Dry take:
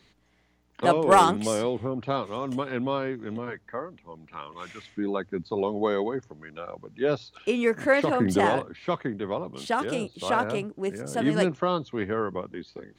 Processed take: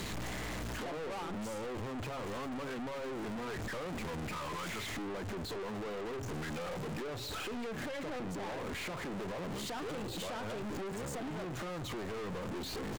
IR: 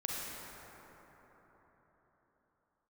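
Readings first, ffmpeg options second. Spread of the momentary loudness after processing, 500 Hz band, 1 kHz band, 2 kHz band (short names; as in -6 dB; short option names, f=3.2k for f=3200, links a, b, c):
1 LU, -14.0 dB, -15.0 dB, -10.0 dB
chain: -filter_complex "[0:a]aeval=exprs='val(0)+0.5*0.0224*sgn(val(0))':c=same,equalizer=f=7.1k:w=4.6:g=8,alimiter=limit=-19dB:level=0:latency=1:release=105,acompressor=threshold=-32dB:ratio=6,highshelf=f=2.5k:g=-11,bandreject=f=136.6:t=h:w=4,bandreject=f=273.2:t=h:w=4,bandreject=f=409.8:t=h:w=4,bandreject=f=546.4:t=h:w=4,bandreject=f=683:t=h:w=4,bandreject=f=819.6:t=h:w=4,bandreject=f=956.2:t=h:w=4,bandreject=f=1.0928k:t=h:w=4,bandreject=f=1.2294k:t=h:w=4,bandreject=f=1.366k:t=h:w=4,bandreject=f=1.5026k:t=h:w=4,bandreject=f=1.6392k:t=h:w=4,bandreject=f=1.7758k:t=h:w=4,bandreject=f=1.9124k:t=h:w=4,bandreject=f=2.049k:t=h:w=4,bandreject=f=2.1856k:t=h:w=4,bandreject=f=2.3222k:t=h:w=4,bandreject=f=2.4588k:t=h:w=4,bandreject=f=2.5954k:t=h:w=4,bandreject=f=2.732k:t=h:w=4,bandreject=f=2.8686k:t=h:w=4,bandreject=f=3.0052k:t=h:w=4,bandreject=f=3.1418k:t=h:w=4,bandreject=f=3.2784k:t=h:w=4,bandreject=f=3.415k:t=h:w=4,bandreject=f=3.5516k:t=h:w=4,bandreject=f=3.6882k:t=h:w=4,bandreject=f=3.8248k:t=h:w=4,bandreject=f=3.9614k:t=h:w=4,bandreject=f=4.098k:t=h:w=4,bandreject=f=4.2346k:t=h:w=4,bandreject=f=4.3712k:t=h:w=4,bandreject=f=4.5078k:t=h:w=4,asplit=2[a][b];[b]aecho=0:1:186:0.0841[c];[a][c]amix=inputs=2:normalize=0,aeval=exprs='(tanh(200*val(0)+0.25)-tanh(0.25))/200':c=same,volume=7.5dB"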